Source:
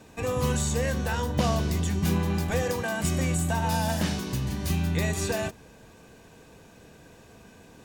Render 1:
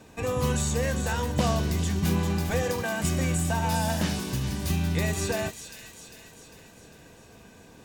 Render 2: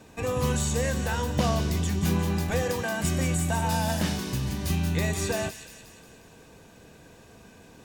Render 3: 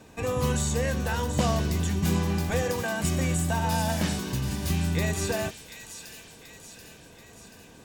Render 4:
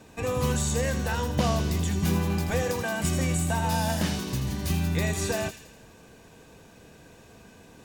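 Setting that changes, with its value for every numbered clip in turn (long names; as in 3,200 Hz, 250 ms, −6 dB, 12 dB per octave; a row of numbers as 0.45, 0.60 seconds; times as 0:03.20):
delay with a high-pass on its return, delay time: 400, 178, 733, 82 milliseconds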